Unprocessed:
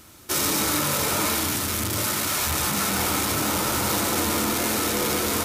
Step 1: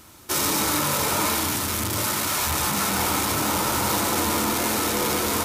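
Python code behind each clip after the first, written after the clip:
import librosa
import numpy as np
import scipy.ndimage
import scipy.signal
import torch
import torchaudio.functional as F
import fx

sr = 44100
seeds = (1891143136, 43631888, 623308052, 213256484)

y = fx.peak_eq(x, sr, hz=940.0, db=4.5, octaves=0.49)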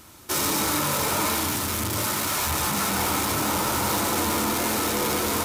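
y = 10.0 ** (-15.5 / 20.0) * np.tanh(x / 10.0 ** (-15.5 / 20.0))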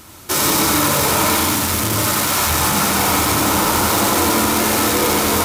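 y = x + 10.0 ** (-4.5 / 20.0) * np.pad(x, (int(91 * sr / 1000.0), 0))[:len(x)]
y = F.gain(torch.from_numpy(y), 7.0).numpy()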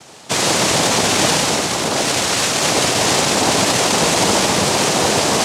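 y = fx.noise_vocoder(x, sr, seeds[0], bands=2)
y = F.gain(torch.from_numpy(y), 1.5).numpy()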